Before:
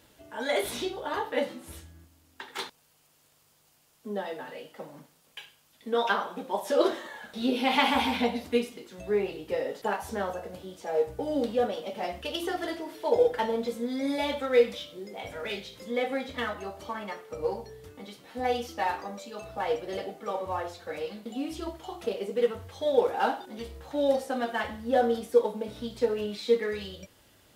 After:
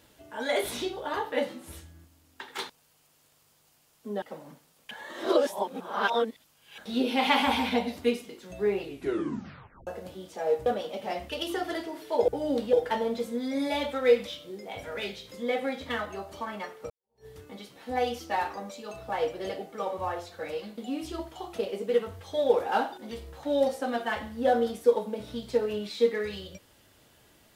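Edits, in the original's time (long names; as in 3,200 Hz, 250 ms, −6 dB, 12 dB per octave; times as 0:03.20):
0:04.22–0:04.70: remove
0:05.39–0:07.26: reverse
0:09.32: tape stop 1.03 s
0:11.14–0:11.59: move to 0:13.21
0:17.38–0:17.74: fade in exponential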